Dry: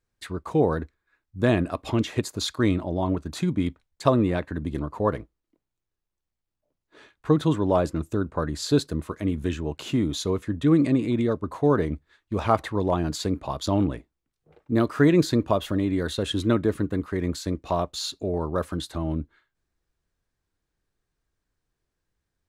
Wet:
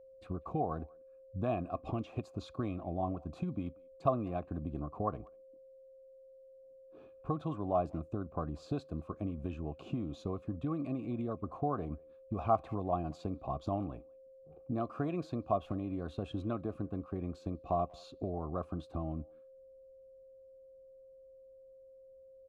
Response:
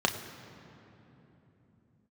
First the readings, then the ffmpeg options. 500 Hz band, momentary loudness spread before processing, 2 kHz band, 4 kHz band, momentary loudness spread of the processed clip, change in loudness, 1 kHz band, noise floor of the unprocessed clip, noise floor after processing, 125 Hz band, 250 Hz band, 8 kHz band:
-12.0 dB, 9 LU, -21.0 dB, -24.0 dB, 23 LU, -12.5 dB, -7.0 dB, -83 dBFS, -57 dBFS, -12.0 dB, -14.0 dB, under -25 dB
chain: -filter_complex "[0:a]equalizer=f=2.7k:t=o:w=1.4:g=-5.5,acrossover=split=480[a][b];[a]acompressor=threshold=-35dB:ratio=6[c];[b]asplit=3[d][e][f];[d]bandpass=f=730:t=q:w=8,volume=0dB[g];[e]bandpass=f=1.09k:t=q:w=8,volume=-6dB[h];[f]bandpass=f=2.44k:t=q:w=8,volume=-9dB[i];[g][h][i]amix=inputs=3:normalize=0[j];[c][j]amix=inputs=2:normalize=0,aeval=exprs='val(0)+0.002*sin(2*PI*530*n/s)':c=same,asplit=2[k][l];[l]adelay=190,highpass=300,lowpass=3.4k,asoftclip=type=hard:threshold=-24.5dB,volume=-26dB[m];[k][m]amix=inputs=2:normalize=0"

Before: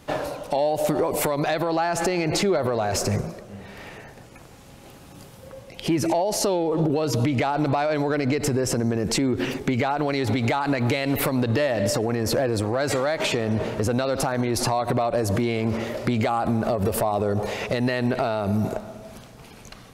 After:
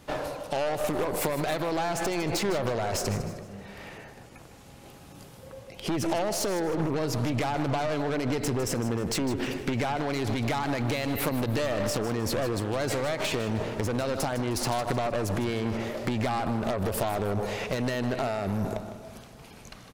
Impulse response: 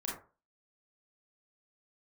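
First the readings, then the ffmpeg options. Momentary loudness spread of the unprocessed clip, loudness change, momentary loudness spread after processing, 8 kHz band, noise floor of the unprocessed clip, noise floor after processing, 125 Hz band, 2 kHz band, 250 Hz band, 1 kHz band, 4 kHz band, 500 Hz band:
7 LU, -5.5 dB, 15 LU, -4.5 dB, -46 dBFS, -49 dBFS, -5.0 dB, -4.5 dB, -5.5 dB, -5.0 dB, -4.0 dB, -5.5 dB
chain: -af "aeval=exprs='0.211*(cos(1*acos(clip(val(0)/0.211,-1,1)))-cos(1*PI/2))+0.0376*(cos(3*acos(clip(val(0)/0.211,-1,1)))-cos(3*PI/2))+0.0299*(cos(5*acos(clip(val(0)/0.211,-1,1)))-cos(5*PI/2))+0.0376*(cos(6*acos(clip(val(0)/0.211,-1,1)))-cos(6*PI/2))+0.0211*(cos(8*acos(clip(val(0)/0.211,-1,1)))-cos(8*PI/2))':c=same,aecho=1:1:155|310|465|620:0.237|0.0901|0.0342|0.013,volume=-4.5dB"

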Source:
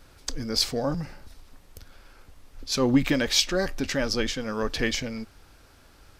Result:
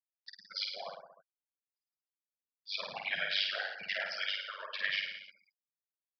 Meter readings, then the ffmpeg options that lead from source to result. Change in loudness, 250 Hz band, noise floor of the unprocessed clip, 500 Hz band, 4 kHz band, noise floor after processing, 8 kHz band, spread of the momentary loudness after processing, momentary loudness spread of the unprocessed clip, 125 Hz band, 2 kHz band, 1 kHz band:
-9.5 dB, -39.0 dB, -55 dBFS, -19.0 dB, -7.5 dB, under -85 dBFS, -29.5 dB, 21 LU, 15 LU, -34.0 dB, -3.0 dB, -9.0 dB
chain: -af "bandreject=f=50:t=h:w=6,bandreject=f=100:t=h:w=6,bandreject=f=150:t=h:w=6,bandreject=f=200:t=h:w=6,bandreject=f=250:t=h:w=6,bandreject=f=300:t=h:w=6,bandreject=f=350:t=h:w=6,bandreject=f=400:t=h:w=6,bandreject=f=450:t=h:w=6,aeval=exprs='0.447*sin(PI/2*3.16*val(0)/0.447)':c=same,afftfilt=real='hypot(re,im)*cos(2*PI*random(0))':imag='hypot(re,im)*sin(2*PI*random(1))':win_size=512:overlap=0.75,aderivative,bandreject=f=1.2k:w=15,afftfilt=real='re*gte(hypot(re,im),0.0251)':imag='im*gte(hypot(re,im),0.0251)':win_size=1024:overlap=0.75,aeval=exprs='val(0)*sin(2*PI*49*n/s)':c=same,aresample=11025,aresample=44100,aecho=1:1:50|105|165.5|232|305.3:0.631|0.398|0.251|0.158|0.1,acompressor=mode=upward:threshold=-51dB:ratio=2.5,firequalizer=gain_entry='entry(160,0);entry(310,-21);entry(640,5);entry(2900,1);entry(4300,-12)':delay=0.05:min_phase=1,volume=1.5dB"

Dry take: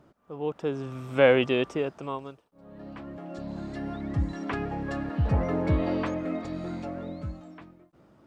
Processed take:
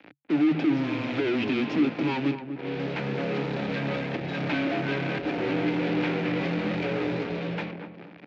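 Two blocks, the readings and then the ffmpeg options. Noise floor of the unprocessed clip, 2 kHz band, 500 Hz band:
-60 dBFS, +3.5 dB, -2.0 dB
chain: -filter_complex "[0:a]lowshelf=f=330:g=7,bandreject=f=60:t=h:w=6,bandreject=f=120:t=h:w=6,bandreject=f=180:t=h:w=6,bandreject=f=240:t=h:w=6,bandreject=f=300:t=h:w=6,bandreject=f=360:t=h:w=6,acompressor=threshold=-25dB:ratio=6,asplit=2[a][b];[b]highpass=f=720:p=1,volume=30dB,asoftclip=type=tanh:threshold=-16.5dB[c];[a][c]amix=inputs=2:normalize=0,lowpass=f=3.2k:p=1,volume=-6dB,aresample=16000,acrusher=bits=4:mix=0:aa=0.5,aresample=44100,asoftclip=type=tanh:threshold=-26.5dB,afreqshift=-140,highpass=f=130:w=0.5412,highpass=f=130:w=1.3066,equalizer=f=300:t=q:w=4:g=10,equalizer=f=1.1k:t=q:w=4:g=-9,equalizer=f=2.4k:t=q:w=4:g=7,lowpass=f=4.1k:w=0.5412,lowpass=f=4.1k:w=1.3066,asplit=2[d][e];[e]adelay=244,lowpass=f=1.1k:p=1,volume=-8.5dB,asplit=2[f][g];[g]adelay=244,lowpass=f=1.1k:p=1,volume=0.39,asplit=2[h][i];[i]adelay=244,lowpass=f=1.1k:p=1,volume=0.39,asplit=2[j][k];[k]adelay=244,lowpass=f=1.1k:p=1,volume=0.39[l];[d][f][h][j][l]amix=inputs=5:normalize=0"

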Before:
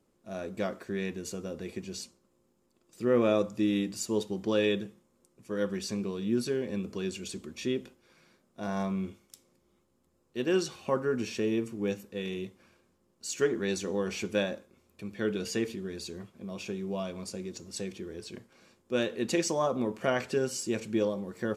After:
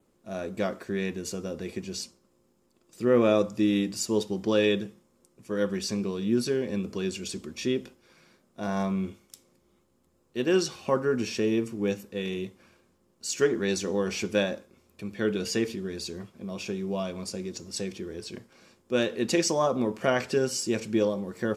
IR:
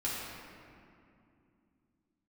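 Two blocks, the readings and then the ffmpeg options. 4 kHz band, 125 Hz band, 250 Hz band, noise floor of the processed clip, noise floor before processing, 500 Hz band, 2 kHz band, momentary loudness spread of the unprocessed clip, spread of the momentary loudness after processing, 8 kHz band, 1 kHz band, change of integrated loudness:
+4.5 dB, +3.5 dB, +3.5 dB, -68 dBFS, -71 dBFS, +3.5 dB, +3.5 dB, 13 LU, 13 LU, +4.5 dB, +3.5 dB, +3.5 dB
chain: -af "adynamicequalizer=threshold=0.00178:dfrequency=5200:dqfactor=4.8:tfrequency=5200:tqfactor=4.8:attack=5:release=100:ratio=0.375:range=2.5:mode=boostabove:tftype=bell,volume=3.5dB"

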